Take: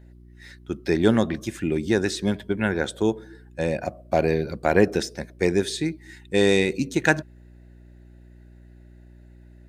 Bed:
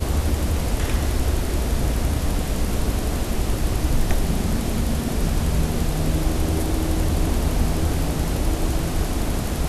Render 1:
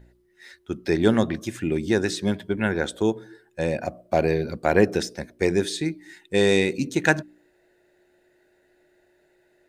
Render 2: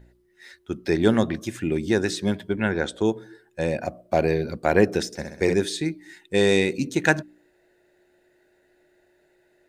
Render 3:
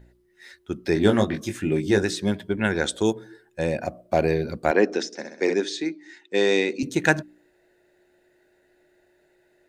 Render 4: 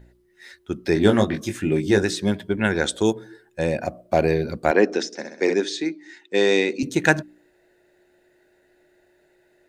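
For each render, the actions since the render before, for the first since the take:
hum removal 60 Hz, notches 5
0:02.57–0:03.06: low-pass filter 7,900 Hz; 0:05.06–0:05.54: flutter between parallel walls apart 11 metres, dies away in 0.68 s
0:00.94–0:02.03: double-tracking delay 20 ms −4.5 dB; 0:02.64–0:03.13: high-shelf EQ 3,600 Hz +11.5 dB; 0:04.71–0:06.83: Chebyshev band-pass filter 250–6,400 Hz, order 3
level +2 dB

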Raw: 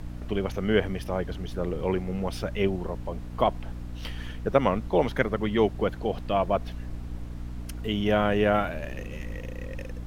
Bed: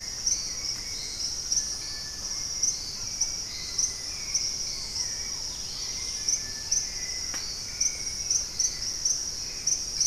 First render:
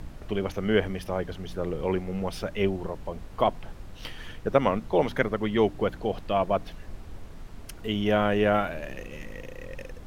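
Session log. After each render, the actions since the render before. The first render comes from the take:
hum removal 60 Hz, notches 5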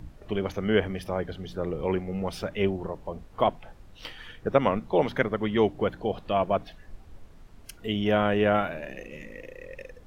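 noise reduction from a noise print 8 dB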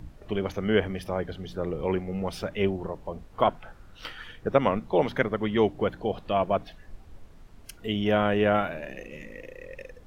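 0:03.42–0:04.24: parametric band 1,400 Hz +11 dB 0.39 octaves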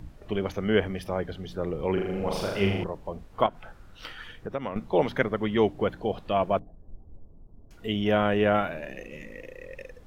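0:01.93–0:02.84: flutter between parallel walls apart 6.8 metres, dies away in 1 s
0:03.46–0:04.76: downward compressor 2 to 1, threshold −35 dBFS
0:06.59–0:07.71: Gaussian smoothing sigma 12 samples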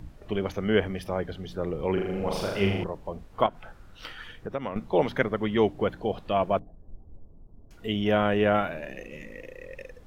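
no processing that can be heard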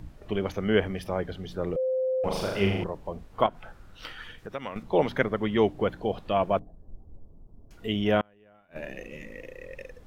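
0:01.76–0:02.24: beep over 518 Hz −23.5 dBFS
0:04.38–0:04.83: tilt shelving filter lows −5.5 dB, about 1,400 Hz
0:08.20–0:08.76: gate with flip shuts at −17 dBFS, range −35 dB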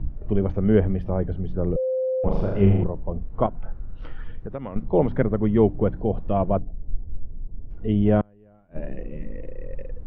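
low-pass filter 1,200 Hz 6 dB per octave
spectral tilt −3.5 dB per octave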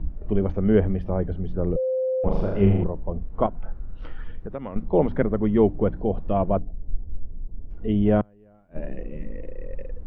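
parametric band 120 Hz −12.5 dB 0.21 octaves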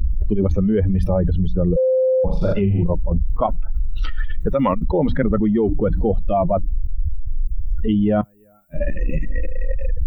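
spectral dynamics exaggerated over time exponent 2
envelope flattener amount 100%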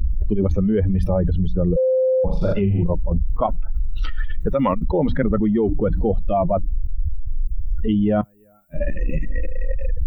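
level −1 dB

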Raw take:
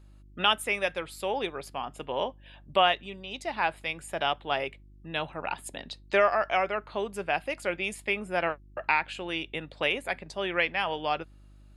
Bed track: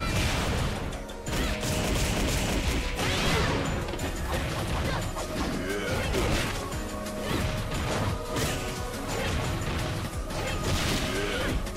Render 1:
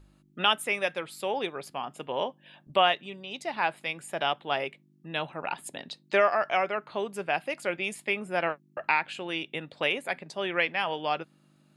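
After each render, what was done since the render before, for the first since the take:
hum removal 50 Hz, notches 2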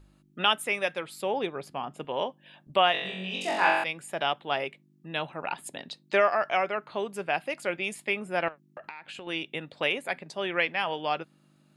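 0:01.22–0:02.05: spectral tilt −1.5 dB per octave
0:02.92–0:03.84: flutter between parallel walls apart 3.7 metres, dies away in 1 s
0:08.48–0:09.27: downward compressor 16 to 1, threshold −37 dBFS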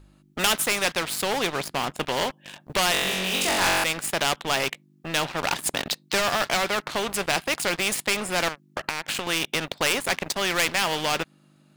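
leveller curve on the samples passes 3
every bin compressed towards the loudest bin 2 to 1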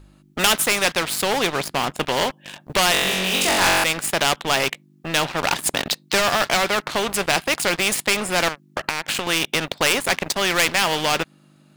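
level +4.5 dB

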